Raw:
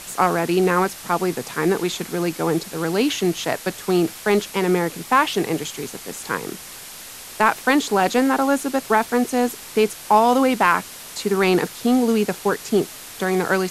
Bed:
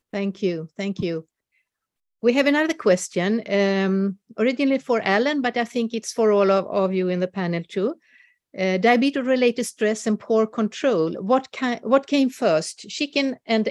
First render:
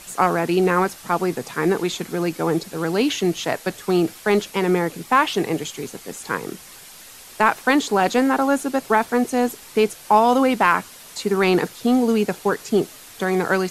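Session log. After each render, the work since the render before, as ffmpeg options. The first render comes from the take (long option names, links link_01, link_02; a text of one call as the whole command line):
ffmpeg -i in.wav -af "afftdn=noise_reduction=6:noise_floor=-38" out.wav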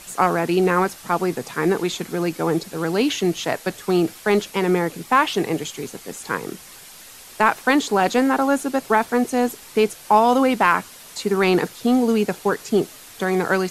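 ffmpeg -i in.wav -af anull out.wav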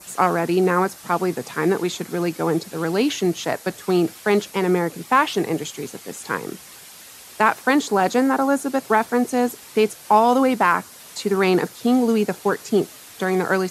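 ffmpeg -i in.wav -af "highpass=69,adynamicequalizer=threshold=0.0126:dfrequency=2900:dqfactor=1.4:tfrequency=2900:tqfactor=1.4:attack=5:release=100:ratio=0.375:range=3.5:mode=cutabove:tftype=bell" out.wav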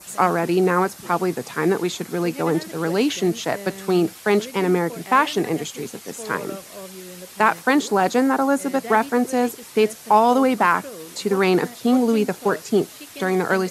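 ffmpeg -i in.wav -i bed.wav -filter_complex "[1:a]volume=-17dB[link_01];[0:a][link_01]amix=inputs=2:normalize=0" out.wav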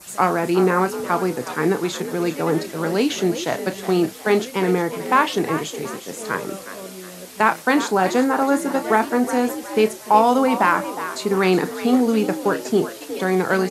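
ffmpeg -i in.wav -filter_complex "[0:a]asplit=2[link_01][link_02];[link_02]adelay=32,volume=-11.5dB[link_03];[link_01][link_03]amix=inputs=2:normalize=0,asplit=5[link_04][link_05][link_06][link_07][link_08];[link_05]adelay=365,afreqshift=63,volume=-12dB[link_09];[link_06]adelay=730,afreqshift=126,volume=-20.6dB[link_10];[link_07]adelay=1095,afreqshift=189,volume=-29.3dB[link_11];[link_08]adelay=1460,afreqshift=252,volume=-37.9dB[link_12];[link_04][link_09][link_10][link_11][link_12]amix=inputs=5:normalize=0" out.wav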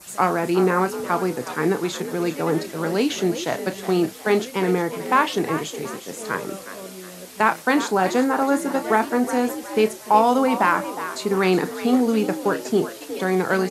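ffmpeg -i in.wav -af "volume=-1.5dB" out.wav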